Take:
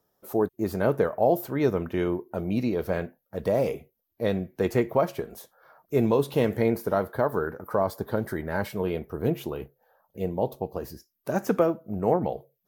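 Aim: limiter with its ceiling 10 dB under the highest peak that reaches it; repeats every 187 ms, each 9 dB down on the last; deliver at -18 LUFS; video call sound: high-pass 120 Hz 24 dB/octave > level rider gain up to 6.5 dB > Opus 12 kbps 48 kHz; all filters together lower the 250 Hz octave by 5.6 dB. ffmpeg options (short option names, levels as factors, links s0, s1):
-af "equalizer=f=250:t=o:g=-8,alimiter=limit=0.0891:level=0:latency=1,highpass=f=120:w=0.5412,highpass=f=120:w=1.3066,aecho=1:1:187|374|561|748:0.355|0.124|0.0435|0.0152,dynaudnorm=m=2.11,volume=6.31" -ar 48000 -c:a libopus -b:a 12k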